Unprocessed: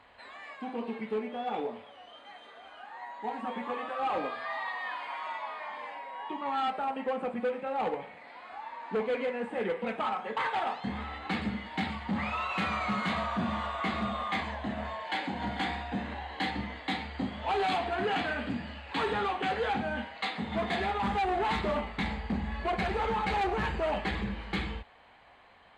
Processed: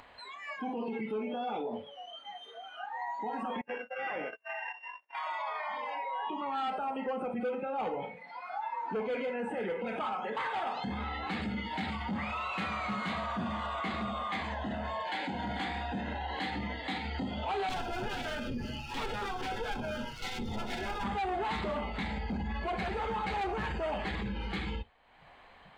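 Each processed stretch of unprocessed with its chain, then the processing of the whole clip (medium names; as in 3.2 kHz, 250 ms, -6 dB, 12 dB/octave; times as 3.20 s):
3.61–5.15 s: sorted samples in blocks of 16 samples + gate -36 dBFS, range -37 dB + cabinet simulation 140–2400 Hz, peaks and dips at 270 Hz -8 dB, 850 Hz -4 dB, 1.2 kHz -6 dB
17.69–21.05 s: comb filter that takes the minimum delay 8.2 ms + bass shelf 84 Hz +10.5 dB + compression 2:1, threshold -40 dBFS
whole clip: spectral noise reduction 16 dB; peak limiter -35.5 dBFS; upward compressor, threshold -52 dBFS; trim +7 dB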